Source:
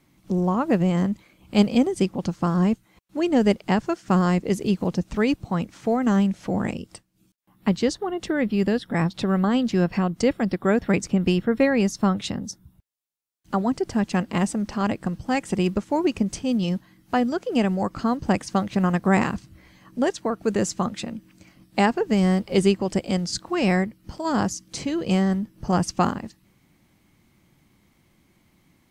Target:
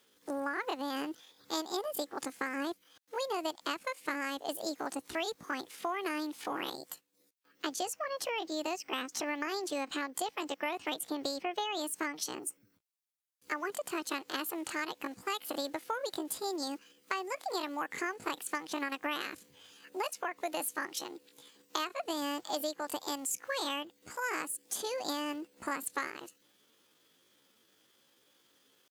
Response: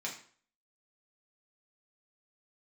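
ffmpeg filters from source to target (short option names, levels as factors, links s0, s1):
-af "highpass=f=930:p=1,asetrate=68011,aresample=44100,atempo=0.64842,acompressor=threshold=0.0251:ratio=6"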